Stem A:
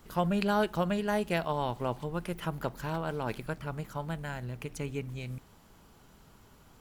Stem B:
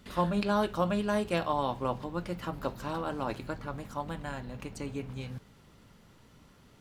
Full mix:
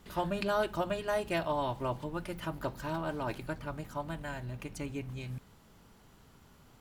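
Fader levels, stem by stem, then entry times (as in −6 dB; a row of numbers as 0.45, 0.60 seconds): −3.5, −6.0 decibels; 0.00, 0.00 seconds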